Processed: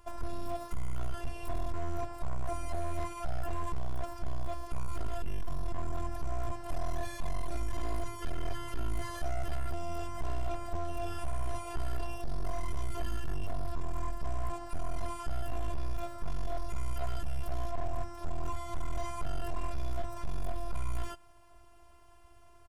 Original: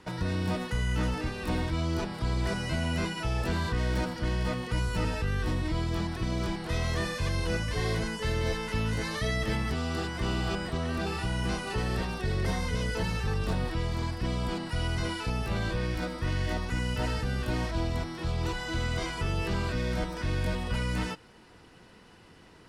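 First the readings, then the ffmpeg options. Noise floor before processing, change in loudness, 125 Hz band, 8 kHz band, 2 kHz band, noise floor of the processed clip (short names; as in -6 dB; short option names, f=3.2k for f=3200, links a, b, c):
-54 dBFS, -8.5 dB, -9.5 dB, -7.5 dB, -15.0 dB, -55 dBFS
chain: -af "firequalizer=gain_entry='entry(100,0);entry(150,12);entry(210,-27);entry(550,-4);entry(1200,-8);entry(1900,-17);entry(2800,-12);entry(4100,-17);entry(7300,-8);entry(14000,-1)':delay=0.05:min_phase=1,afftfilt=real='hypot(re,im)*cos(PI*b)':imag='0':win_size=512:overlap=0.75,aeval=exprs='clip(val(0),-1,0.0251)':c=same,volume=7.5dB"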